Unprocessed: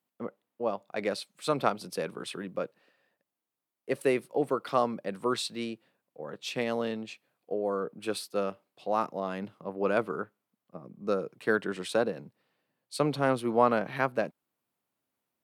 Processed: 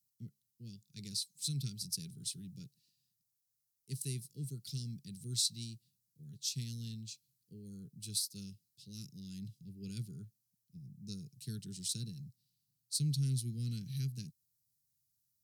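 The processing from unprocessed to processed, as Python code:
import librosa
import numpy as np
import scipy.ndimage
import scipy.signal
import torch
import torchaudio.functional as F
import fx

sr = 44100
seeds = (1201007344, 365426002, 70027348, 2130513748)

y = scipy.signal.sosfilt(scipy.signal.cheby1(3, 1.0, [130.0, 5200.0], 'bandstop', fs=sr, output='sos'), x)
y = fx.small_body(y, sr, hz=(400.0, 1400.0, 4000.0), ring_ms=45, db=9)
y = y * 10.0 ** (7.0 / 20.0)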